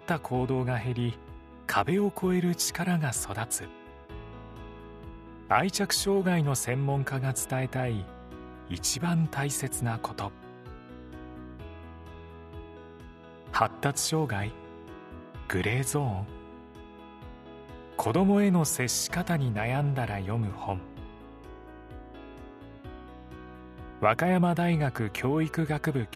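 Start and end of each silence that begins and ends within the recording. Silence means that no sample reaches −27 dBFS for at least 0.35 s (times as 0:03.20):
0:01.10–0:01.69
0:03.57–0:05.51
0:08.00–0:08.71
0:10.27–0:13.54
0:14.49–0:15.50
0:16.23–0:17.99
0:20.75–0:24.02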